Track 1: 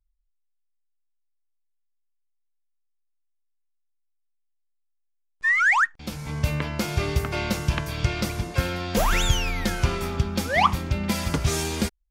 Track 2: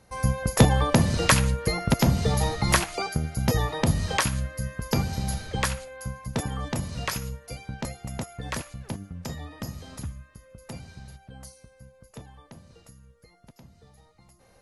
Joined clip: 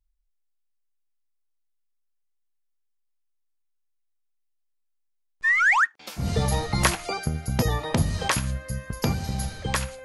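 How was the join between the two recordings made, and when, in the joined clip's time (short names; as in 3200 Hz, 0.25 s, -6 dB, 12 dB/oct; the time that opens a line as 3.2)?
track 1
5.76–6.28 HPF 150 Hz -> 1400 Hz
6.22 switch to track 2 from 2.11 s, crossfade 0.12 s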